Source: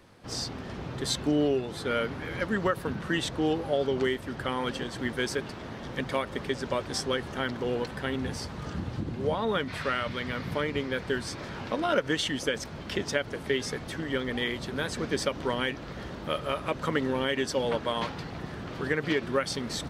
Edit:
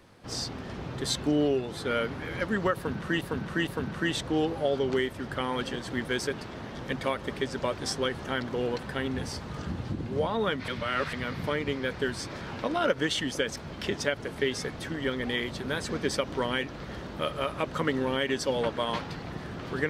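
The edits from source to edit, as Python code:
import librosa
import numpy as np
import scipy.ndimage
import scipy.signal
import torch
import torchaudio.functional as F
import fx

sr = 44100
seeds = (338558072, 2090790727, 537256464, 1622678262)

y = fx.edit(x, sr, fx.repeat(start_s=2.75, length_s=0.46, count=3),
    fx.reverse_span(start_s=9.76, length_s=0.45), tone=tone)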